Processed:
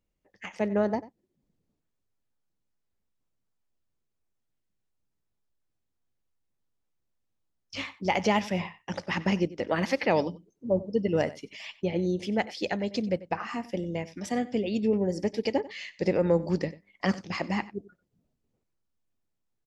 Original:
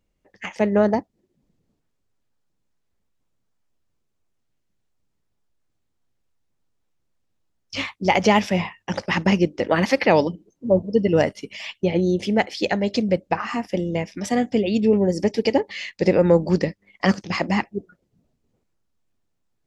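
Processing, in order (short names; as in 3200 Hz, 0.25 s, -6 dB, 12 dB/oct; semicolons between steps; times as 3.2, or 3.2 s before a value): outdoor echo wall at 16 m, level -18 dB; gain -8 dB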